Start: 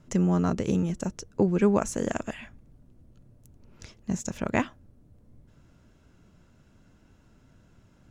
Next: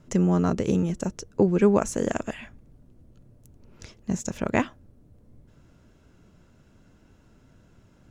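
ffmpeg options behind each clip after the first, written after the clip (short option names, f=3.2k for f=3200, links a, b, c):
-af "equalizer=f=430:t=o:w=0.96:g=2.5,volume=1.5dB"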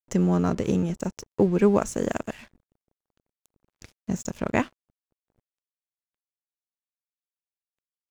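-af "aeval=exprs='sgn(val(0))*max(abs(val(0))-0.00562,0)':c=same"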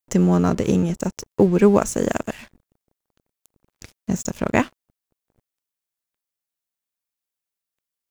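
-af "crystalizer=i=0.5:c=0,volume=5dB"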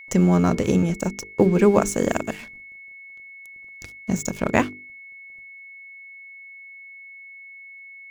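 -af "aeval=exprs='val(0)+0.01*sin(2*PI*2200*n/s)':c=same,bandreject=f=50:t=h:w=6,bandreject=f=100:t=h:w=6,bandreject=f=150:t=h:w=6,bandreject=f=200:t=h:w=6,bandreject=f=250:t=h:w=6,bandreject=f=300:t=h:w=6,bandreject=f=350:t=h:w=6,bandreject=f=400:t=h:w=6,bandreject=f=450:t=h:w=6"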